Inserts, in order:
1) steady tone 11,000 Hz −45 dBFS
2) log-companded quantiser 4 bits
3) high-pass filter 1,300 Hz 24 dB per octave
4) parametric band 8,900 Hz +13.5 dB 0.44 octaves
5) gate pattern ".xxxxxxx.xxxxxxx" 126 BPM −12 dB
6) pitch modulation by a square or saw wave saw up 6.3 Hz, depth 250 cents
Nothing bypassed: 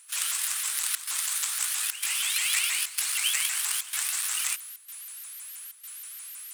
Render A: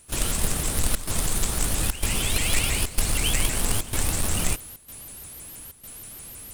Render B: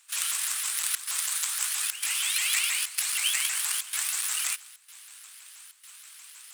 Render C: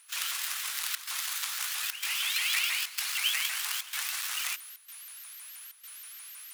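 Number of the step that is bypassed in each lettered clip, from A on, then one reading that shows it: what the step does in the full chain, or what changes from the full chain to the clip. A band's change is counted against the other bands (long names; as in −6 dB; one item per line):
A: 3, 1 kHz band +7.0 dB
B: 1, change in momentary loudness spread +6 LU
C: 4, 8 kHz band −7.5 dB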